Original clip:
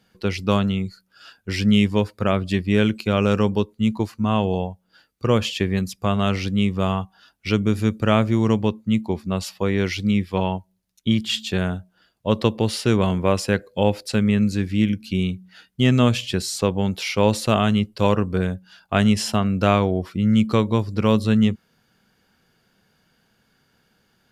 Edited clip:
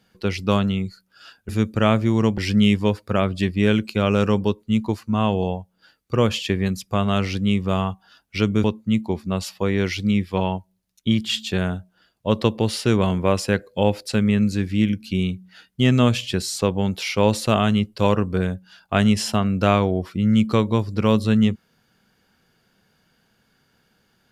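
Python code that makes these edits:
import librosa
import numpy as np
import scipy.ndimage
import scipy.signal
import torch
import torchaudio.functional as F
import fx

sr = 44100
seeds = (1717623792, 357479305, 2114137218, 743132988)

y = fx.edit(x, sr, fx.move(start_s=7.75, length_s=0.89, to_s=1.49), tone=tone)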